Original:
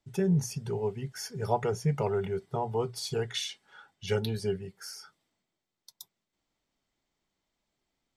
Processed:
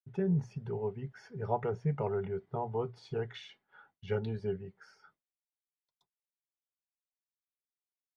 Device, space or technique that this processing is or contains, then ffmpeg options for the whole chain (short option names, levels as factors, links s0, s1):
hearing-loss simulation: -af "lowpass=1900,agate=range=0.0224:threshold=0.00141:ratio=3:detection=peak,volume=0.631"